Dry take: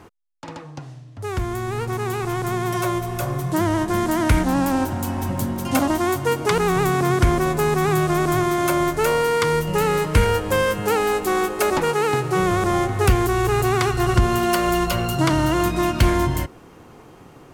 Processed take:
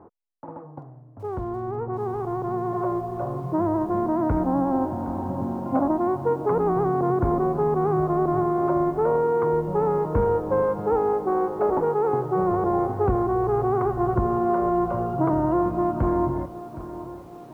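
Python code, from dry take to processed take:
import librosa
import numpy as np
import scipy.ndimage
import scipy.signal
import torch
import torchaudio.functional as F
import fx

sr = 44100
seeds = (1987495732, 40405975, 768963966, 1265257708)

y = scipy.signal.sosfilt(scipy.signal.butter(4, 1000.0, 'lowpass', fs=sr, output='sos'), x)
y = fx.low_shelf(y, sr, hz=150.0, db=-11.5)
y = fx.echo_crushed(y, sr, ms=766, feedback_pct=55, bits=8, wet_db=-14.5)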